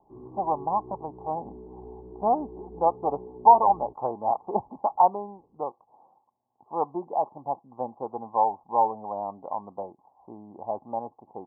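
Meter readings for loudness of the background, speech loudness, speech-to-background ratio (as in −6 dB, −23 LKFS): −45.0 LKFS, −27.0 LKFS, 18.0 dB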